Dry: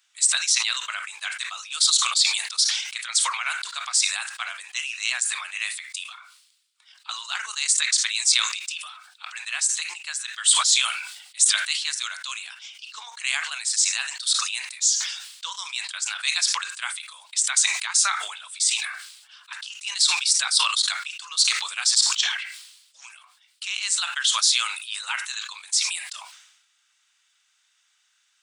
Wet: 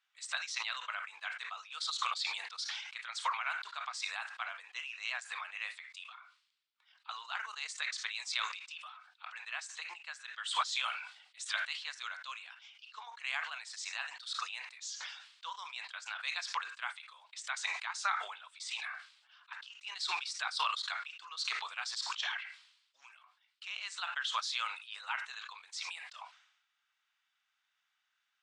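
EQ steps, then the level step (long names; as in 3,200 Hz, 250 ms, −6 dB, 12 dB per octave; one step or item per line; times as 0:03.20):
dynamic equaliser 790 Hz, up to +4 dB, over −45 dBFS, Q 1
head-to-tape spacing loss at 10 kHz 29 dB
−5.0 dB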